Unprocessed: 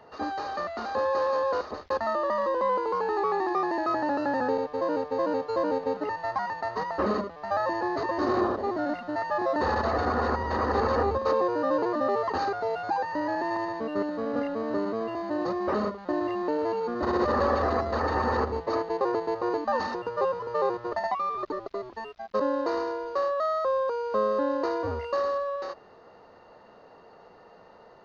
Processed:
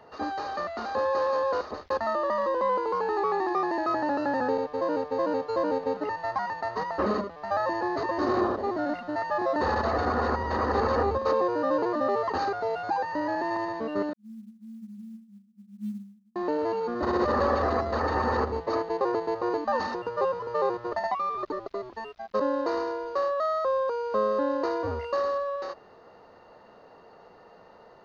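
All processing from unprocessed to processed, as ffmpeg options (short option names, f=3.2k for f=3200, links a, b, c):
-filter_complex "[0:a]asettb=1/sr,asplit=3[a][b][c];[a]atrim=end=14.134[d];[b]atrim=start=14.13:end=16.36,asetpts=PTS-STARTPTS,afade=t=in:d=0.004:c=qsin,afade=t=out:st=2.226:d=0.004:c=qsin,asuperpass=centerf=210:order=20:qfactor=7.2,acrusher=bits=8:mode=log:mix=0:aa=0.000001[e];[c]atrim=start=16.356[f];[d][e]acrossfade=d=0.004:c1=hsin:c2=qsin[g];[g][f]acrossfade=d=0.004:c1=qsin:c2=hsin"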